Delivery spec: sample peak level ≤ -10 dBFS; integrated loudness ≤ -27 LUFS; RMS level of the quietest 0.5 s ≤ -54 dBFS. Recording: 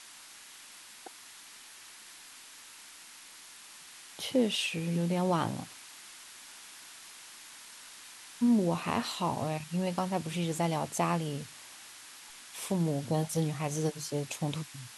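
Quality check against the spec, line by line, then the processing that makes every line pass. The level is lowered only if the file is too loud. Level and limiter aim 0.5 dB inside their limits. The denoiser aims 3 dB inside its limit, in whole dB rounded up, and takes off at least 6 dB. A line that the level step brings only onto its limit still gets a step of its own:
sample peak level -15.0 dBFS: pass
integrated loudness -31.5 LUFS: pass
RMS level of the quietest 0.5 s -51 dBFS: fail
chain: noise reduction 6 dB, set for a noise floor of -51 dBFS

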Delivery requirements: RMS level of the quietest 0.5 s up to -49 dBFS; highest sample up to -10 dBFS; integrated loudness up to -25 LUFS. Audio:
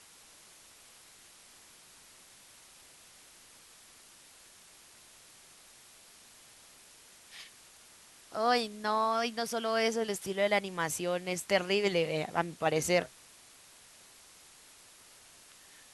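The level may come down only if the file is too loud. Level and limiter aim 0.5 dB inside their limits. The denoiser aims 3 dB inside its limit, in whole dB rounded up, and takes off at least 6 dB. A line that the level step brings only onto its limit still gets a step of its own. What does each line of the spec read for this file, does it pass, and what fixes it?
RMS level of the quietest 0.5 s -57 dBFS: pass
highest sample -13.0 dBFS: pass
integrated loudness -31.0 LUFS: pass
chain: none needed

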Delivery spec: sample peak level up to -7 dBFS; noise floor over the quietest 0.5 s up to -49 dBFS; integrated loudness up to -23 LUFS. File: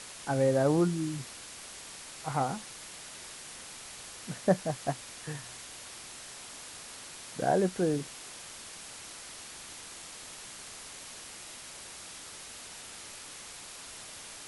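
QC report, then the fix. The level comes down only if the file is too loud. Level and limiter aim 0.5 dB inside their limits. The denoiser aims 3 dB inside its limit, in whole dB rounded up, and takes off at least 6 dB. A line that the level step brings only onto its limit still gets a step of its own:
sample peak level -12.5 dBFS: pass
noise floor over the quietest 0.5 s -46 dBFS: fail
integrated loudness -35.5 LUFS: pass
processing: noise reduction 6 dB, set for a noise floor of -46 dBFS

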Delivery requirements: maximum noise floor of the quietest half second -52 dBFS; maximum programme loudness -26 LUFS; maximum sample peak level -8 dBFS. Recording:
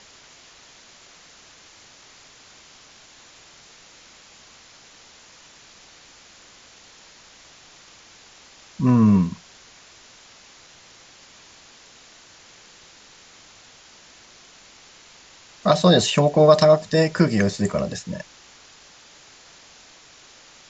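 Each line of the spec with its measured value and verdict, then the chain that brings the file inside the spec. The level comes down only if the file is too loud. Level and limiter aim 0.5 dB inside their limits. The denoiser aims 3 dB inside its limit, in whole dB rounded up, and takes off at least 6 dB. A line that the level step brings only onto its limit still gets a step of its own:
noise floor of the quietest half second -49 dBFS: fail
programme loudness -18.5 LUFS: fail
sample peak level -3.5 dBFS: fail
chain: trim -8 dB

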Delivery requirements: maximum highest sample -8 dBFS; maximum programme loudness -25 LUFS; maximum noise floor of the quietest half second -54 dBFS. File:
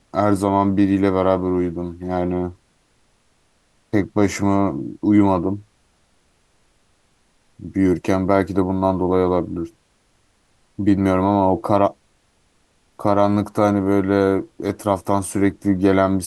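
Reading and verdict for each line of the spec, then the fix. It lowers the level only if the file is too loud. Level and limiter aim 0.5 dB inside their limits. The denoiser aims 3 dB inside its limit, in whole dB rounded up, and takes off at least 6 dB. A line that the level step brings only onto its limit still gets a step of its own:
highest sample -2.0 dBFS: fail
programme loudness -19.5 LUFS: fail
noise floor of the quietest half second -61 dBFS: pass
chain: trim -6 dB; peak limiter -8.5 dBFS

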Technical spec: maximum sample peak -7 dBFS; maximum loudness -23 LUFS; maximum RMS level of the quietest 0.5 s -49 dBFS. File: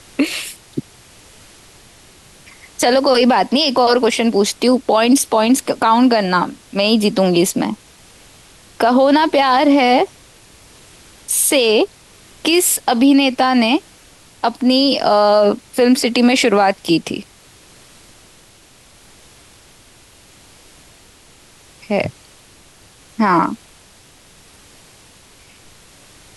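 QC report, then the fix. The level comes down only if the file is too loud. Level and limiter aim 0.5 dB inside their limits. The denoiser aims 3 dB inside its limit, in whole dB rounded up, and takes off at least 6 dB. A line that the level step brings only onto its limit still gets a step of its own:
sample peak -4.0 dBFS: fail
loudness -14.5 LUFS: fail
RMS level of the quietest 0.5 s -47 dBFS: fail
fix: trim -9 dB

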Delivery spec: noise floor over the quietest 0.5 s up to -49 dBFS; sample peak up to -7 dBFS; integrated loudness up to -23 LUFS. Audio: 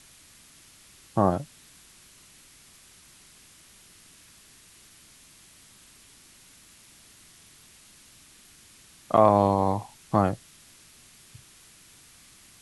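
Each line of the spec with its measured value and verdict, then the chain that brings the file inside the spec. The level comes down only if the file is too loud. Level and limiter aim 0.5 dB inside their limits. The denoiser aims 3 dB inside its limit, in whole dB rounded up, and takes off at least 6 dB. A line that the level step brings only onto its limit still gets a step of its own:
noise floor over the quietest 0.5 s -54 dBFS: pass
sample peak -5.5 dBFS: fail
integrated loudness -24.0 LUFS: pass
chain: peak limiter -7.5 dBFS

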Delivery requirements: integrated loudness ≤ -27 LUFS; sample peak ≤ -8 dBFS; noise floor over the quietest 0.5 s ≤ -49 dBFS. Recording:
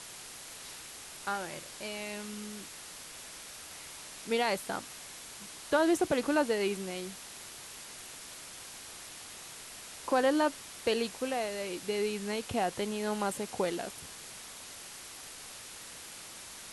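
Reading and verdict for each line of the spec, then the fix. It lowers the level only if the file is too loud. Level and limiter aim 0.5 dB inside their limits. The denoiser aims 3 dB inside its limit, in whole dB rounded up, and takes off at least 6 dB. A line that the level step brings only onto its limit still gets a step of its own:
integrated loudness -35.5 LUFS: pass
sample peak -16.5 dBFS: pass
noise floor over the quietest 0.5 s -47 dBFS: fail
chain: noise reduction 6 dB, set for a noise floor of -47 dBFS

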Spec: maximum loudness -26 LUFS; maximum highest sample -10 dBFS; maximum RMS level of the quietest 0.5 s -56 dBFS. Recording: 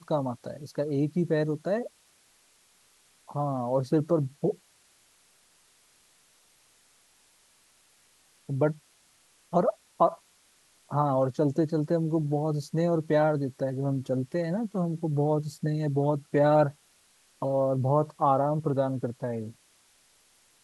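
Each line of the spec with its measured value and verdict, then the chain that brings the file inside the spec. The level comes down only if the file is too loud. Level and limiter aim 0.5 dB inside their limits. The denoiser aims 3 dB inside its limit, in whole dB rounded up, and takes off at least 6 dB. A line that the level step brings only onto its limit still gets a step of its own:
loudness -28.0 LUFS: pass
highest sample -10.5 dBFS: pass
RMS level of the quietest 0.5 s -63 dBFS: pass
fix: none needed

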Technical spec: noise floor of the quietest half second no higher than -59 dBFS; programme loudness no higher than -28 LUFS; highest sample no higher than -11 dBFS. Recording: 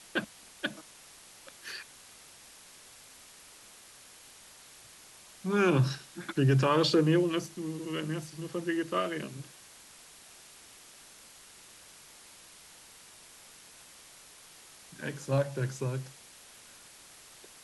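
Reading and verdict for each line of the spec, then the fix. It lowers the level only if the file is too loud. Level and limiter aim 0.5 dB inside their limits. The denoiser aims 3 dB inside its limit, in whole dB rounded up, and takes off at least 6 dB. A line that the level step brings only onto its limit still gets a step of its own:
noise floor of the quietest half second -54 dBFS: fail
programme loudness -30.5 LUFS: pass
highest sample -14.0 dBFS: pass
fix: noise reduction 8 dB, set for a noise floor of -54 dBFS

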